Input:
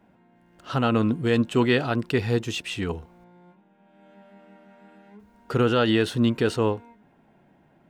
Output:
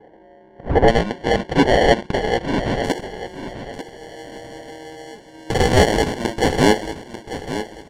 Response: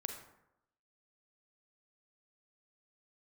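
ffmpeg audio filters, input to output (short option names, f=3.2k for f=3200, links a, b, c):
-af "highpass=f=800:t=q:w=4.3,acrusher=samples=35:mix=1:aa=0.000001,aeval=exprs='0.355*(cos(1*acos(clip(val(0)/0.355,-1,1)))-cos(1*PI/2))+0.0316*(cos(5*acos(clip(val(0)/0.355,-1,1)))-cos(5*PI/2))':c=same,asetnsamples=n=441:p=0,asendcmd='0.88 lowpass f 4000;2.84 lowpass f 8200',lowpass=1.4k,aecho=1:1:892|1784|2676:0.266|0.0798|0.0239,volume=7.5dB"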